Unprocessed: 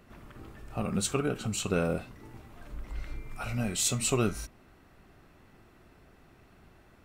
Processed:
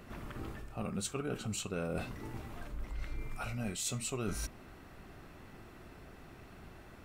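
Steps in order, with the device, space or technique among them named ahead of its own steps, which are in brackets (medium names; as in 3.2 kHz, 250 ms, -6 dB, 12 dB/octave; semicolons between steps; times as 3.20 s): compression on the reversed sound (reverse; compression 6:1, threshold -40 dBFS, peak gain reduction 16.5 dB; reverse); trim +5 dB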